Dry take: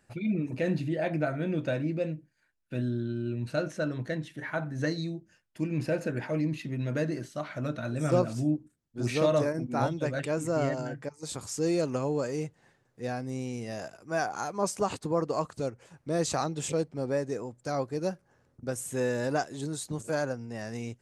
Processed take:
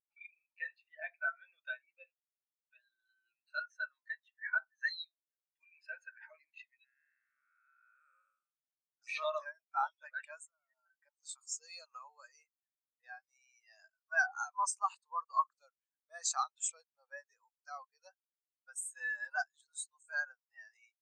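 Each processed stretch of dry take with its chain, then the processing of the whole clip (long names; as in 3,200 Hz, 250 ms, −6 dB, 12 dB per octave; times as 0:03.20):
0:06.84–0:09.02: spectrum smeared in time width 467 ms + phaser with its sweep stopped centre 1,900 Hz, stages 4
0:10.45–0:11.03: low-shelf EQ 360 Hz −4 dB + downward compressor 20 to 1, threshold −40 dBFS
whole clip: high-pass filter 930 Hz 24 dB per octave; high-shelf EQ 2,100 Hz +7 dB; every bin expanded away from the loudest bin 2.5 to 1; level −4.5 dB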